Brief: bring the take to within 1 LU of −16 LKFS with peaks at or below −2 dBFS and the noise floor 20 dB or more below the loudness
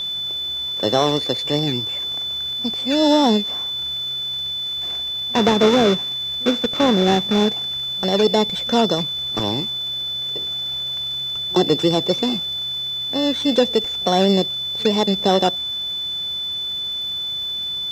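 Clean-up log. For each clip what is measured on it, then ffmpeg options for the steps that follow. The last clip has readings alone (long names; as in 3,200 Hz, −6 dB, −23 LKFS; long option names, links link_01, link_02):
interfering tone 3,500 Hz; level of the tone −23 dBFS; integrated loudness −19.5 LKFS; sample peak −2.5 dBFS; target loudness −16.0 LKFS
→ -af "bandreject=frequency=3500:width=30"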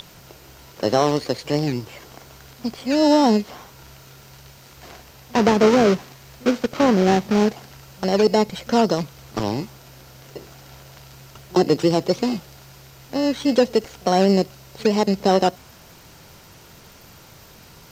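interfering tone none found; integrated loudness −20.0 LKFS; sample peak −3.5 dBFS; target loudness −16.0 LKFS
→ -af "volume=4dB,alimiter=limit=-2dB:level=0:latency=1"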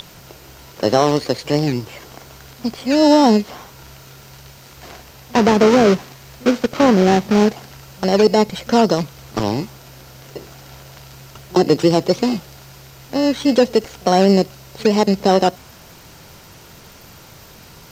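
integrated loudness −16.5 LKFS; sample peak −2.0 dBFS; background noise floor −43 dBFS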